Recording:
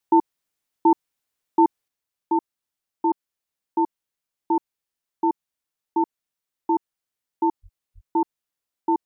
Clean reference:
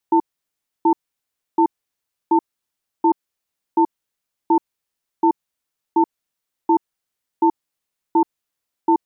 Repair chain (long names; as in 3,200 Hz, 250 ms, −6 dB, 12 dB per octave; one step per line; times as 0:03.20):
0:01.88: level correction +5 dB
0:07.62–0:07.74: high-pass filter 140 Hz 24 dB per octave
0:07.94–0:08.06: high-pass filter 140 Hz 24 dB per octave